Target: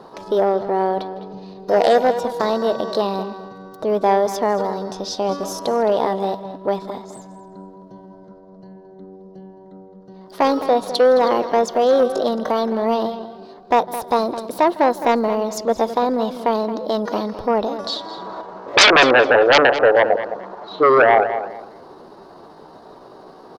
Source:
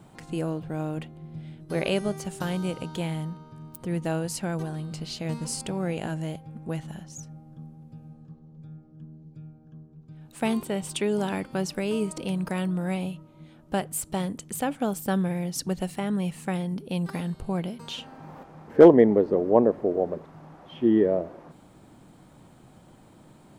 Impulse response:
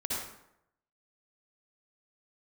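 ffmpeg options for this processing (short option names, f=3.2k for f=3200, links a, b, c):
-filter_complex "[0:a]firequalizer=gain_entry='entry(210,0);entry(360,6);entry(910,1);entry(1900,-13);entry(3500,-1);entry(7000,-21)':delay=0.05:min_phase=1,asplit=2[a][b];[b]aecho=0:1:157|314|471:0.0794|0.0365|0.0168[c];[a][c]amix=inputs=2:normalize=0,aeval=exprs='0.794*sin(PI/2*4.47*val(0)/0.794)':c=same,bass=f=250:g=-14,treble=f=4k:g=3,asplit=2[d][e];[e]adelay=212,lowpass=f=4k:p=1,volume=-12dB,asplit=2[f][g];[g]adelay=212,lowpass=f=4k:p=1,volume=0.24,asplit=2[h][i];[i]adelay=212,lowpass=f=4k:p=1,volume=0.24[j];[f][h][j]amix=inputs=3:normalize=0[k];[d][k]amix=inputs=2:normalize=0,asetrate=53981,aresample=44100,atempo=0.816958,volume=-4dB"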